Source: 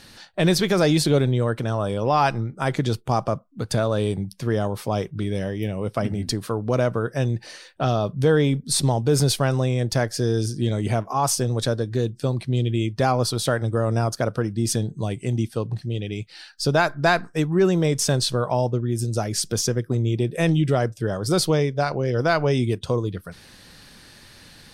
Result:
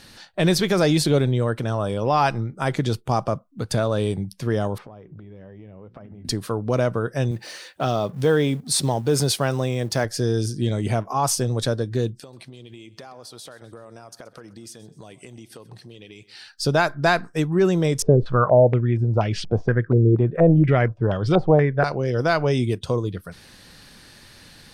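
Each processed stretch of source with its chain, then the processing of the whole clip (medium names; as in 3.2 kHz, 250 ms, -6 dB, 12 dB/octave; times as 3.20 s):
4.78–6.25 s: low-pass 1.8 kHz + hum notches 60/120/180/240/300/360 Hz + compression 20:1, threshold -37 dBFS
7.31–10.05 s: companding laws mixed up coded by mu + high-pass 160 Hz 6 dB/octave
12.20–16.48 s: high-pass 520 Hz 6 dB/octave + compression 12:1, threshold -37 dBFS + feedback delay 128 ms, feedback 47%, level -18.5 dB
18.02–21.84 s: bass shelf 99 Hz +11.5 dB + step-sequenced low-pass 4.2 Hz 440–2900 Hz
whole clip: none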